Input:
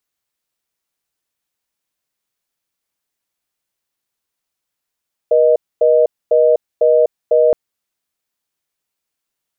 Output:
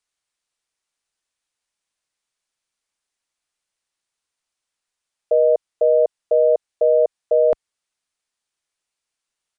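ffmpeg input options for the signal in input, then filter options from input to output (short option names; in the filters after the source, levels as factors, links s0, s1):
-f lavfi -i "aevalsrc='0.282*(sin(2*PI*480*t)+sin(2*PI*620*t))*clip(min(mod(t,0.5),0.25-mod(t,0.5))/0.005,0,1)':d=2.22:s=44100"
-af "equalizer=f=170:w=0.35:g=-7,aresample=22050,aresample=44100"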